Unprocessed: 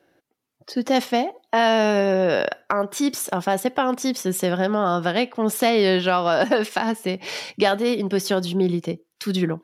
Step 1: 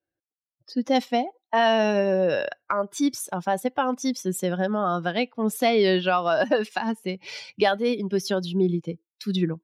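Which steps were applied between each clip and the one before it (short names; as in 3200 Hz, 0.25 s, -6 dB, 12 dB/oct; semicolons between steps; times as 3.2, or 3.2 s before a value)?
per-bin expansion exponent 1.5; high shelf 12000 Hz -10 dB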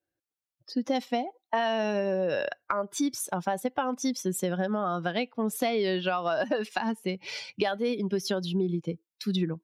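compressor, threshold -24 dBFS, peak gain reduction 8.5 dB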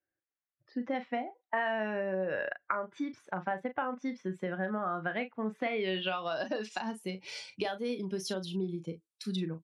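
low-pass sweep 1900 Hz -> 9400 Hz, 5.59–6.99; doubler 37 ms -10 dB; gain -7 dB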